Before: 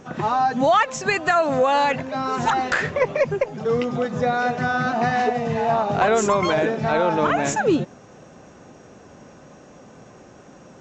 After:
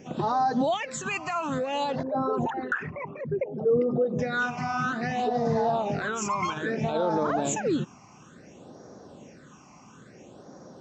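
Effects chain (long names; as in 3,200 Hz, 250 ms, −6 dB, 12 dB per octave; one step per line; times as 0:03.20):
0:02.03–0:04.19: spectral envelope exaggerated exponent 2
high-pass filter 170 Hz 6 dB per octave
brickwall limiter −16 dBFS, peak gain reduction 8.5 dB
all-pass phaser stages 8, 0.59 Hz, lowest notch 480–2,700 Hz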